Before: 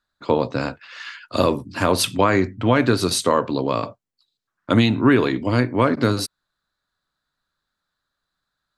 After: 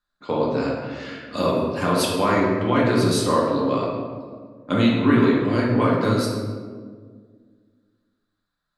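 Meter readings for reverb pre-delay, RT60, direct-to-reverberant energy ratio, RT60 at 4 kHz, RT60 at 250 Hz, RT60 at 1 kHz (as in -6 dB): 4 ms, 1.8 s, -4.5 dB, 0.90 s, 2.4 s, 1.5 s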